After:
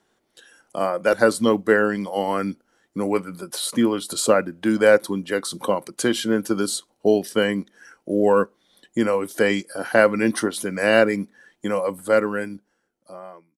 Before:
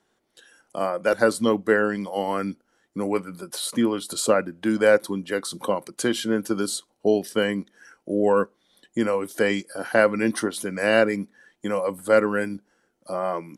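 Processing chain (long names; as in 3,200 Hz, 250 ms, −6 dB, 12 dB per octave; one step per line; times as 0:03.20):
fade-out on the ending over 1.94 s
floating-point word with a short mantissa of 6 bits
level +2.5 dB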